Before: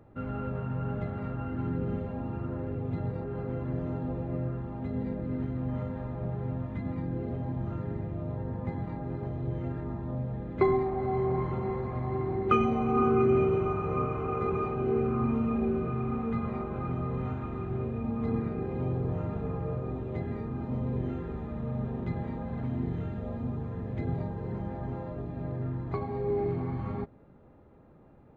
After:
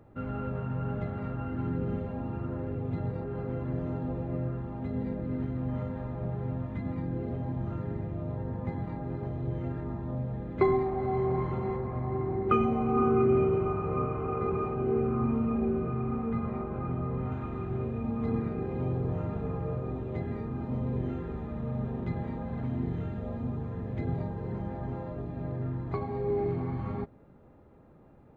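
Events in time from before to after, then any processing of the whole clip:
11.77–17.32 high shelf 3400 Hz -12 dB

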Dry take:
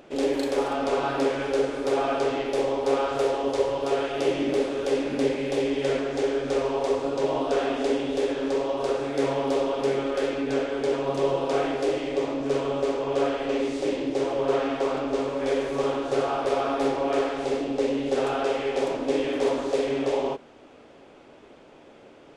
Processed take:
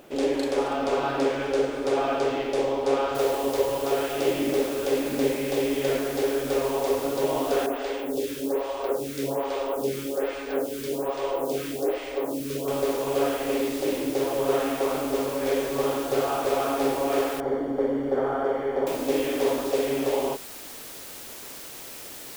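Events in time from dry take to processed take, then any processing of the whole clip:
3.15 noise floor step -63 dB -41 dB
7.66–12.68 photocell phaser 1.2 Hz
17.4–18.87 polynomial smoothing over 41 samples

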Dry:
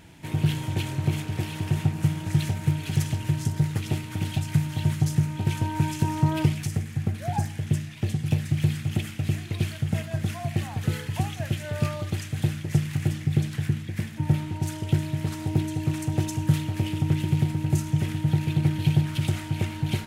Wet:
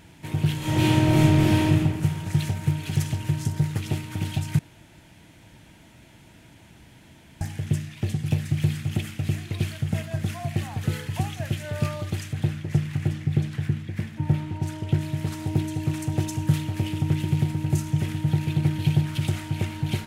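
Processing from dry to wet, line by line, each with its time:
0.57–1.63 reverb throw, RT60 1.6 s, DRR -9 dB
4.59–7.41 room tone
12.33–15.01 high shelf 4700 Hz -9 dB

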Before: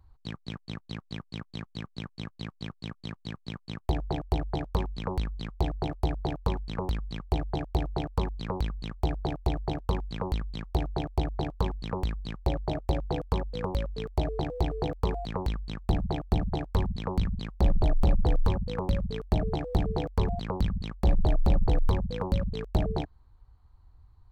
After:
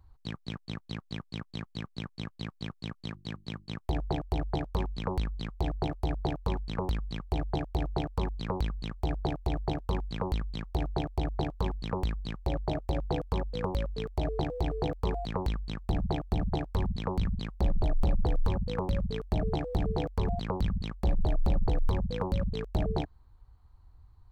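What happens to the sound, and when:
3.11–3.71 notches 50/100/150/200/250/300/350 Hz
whole clip: limiter -19.5 dBFS

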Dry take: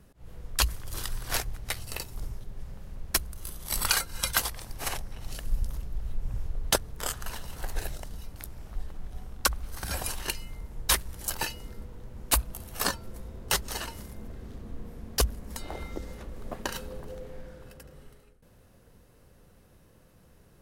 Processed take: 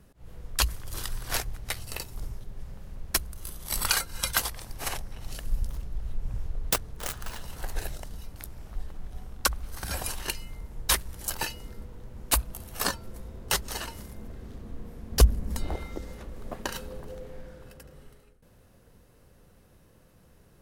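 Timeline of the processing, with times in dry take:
5.67–7.4 self-modulated delay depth 0.75 ms
15.12–15.76 low shelf 320 Hz +10 dB

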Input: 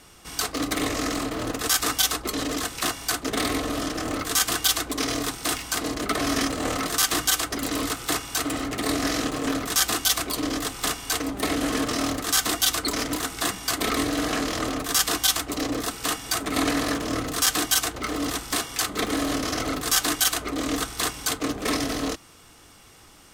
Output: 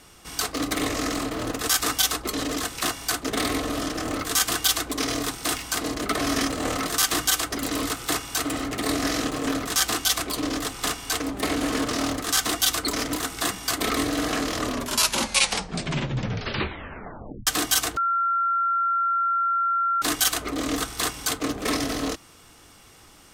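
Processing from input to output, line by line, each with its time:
9.65–12.59 Doppler distortion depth 0.15 ms
14.55 tape stop 2.92 s
17.97–20.02 bleep 1370 Hz -20 dBFS

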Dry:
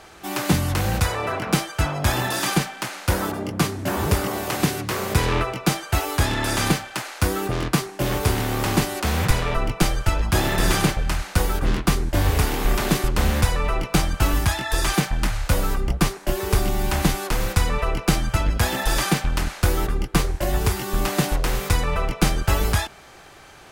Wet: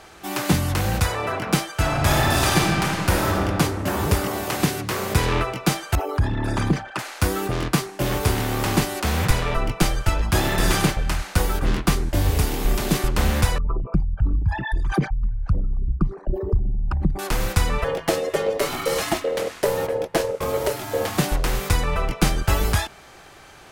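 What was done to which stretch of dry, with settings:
1.73–3.4 reverb throw, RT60 2.6 s, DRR -2 dB
5.95–6.99 formant sharpening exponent 2
12.14–12.94 bell 1400 Hz -5.5 dB 2.1 oct
13.58–17.19 formant sharpening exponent 3
17.84–21.18 ring modulator 500 Hz

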